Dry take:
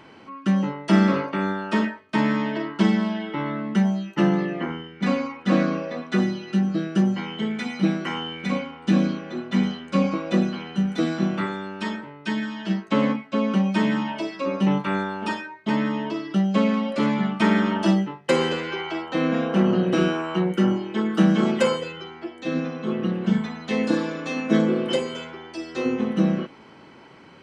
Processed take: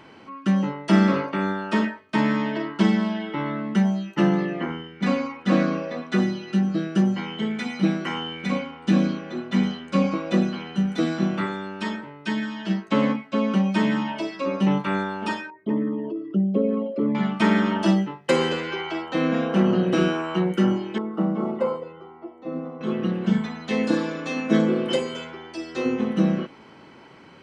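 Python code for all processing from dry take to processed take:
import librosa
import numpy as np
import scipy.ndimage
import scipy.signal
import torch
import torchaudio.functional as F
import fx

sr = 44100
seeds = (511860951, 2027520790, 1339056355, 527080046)

y = fx.chain(x, sr, fx.envelope_sharpen(power=2.0),
    fx.peak_eq(hz=1500.0, db=-7.0, octaves=2.5), at=(15.5, 17.15))
y = fx.chain(y, sr, fx.savgol(points=65),
    fx.low_shelf(hz=370.0, db=-8.5), at=(20.98, 22.81))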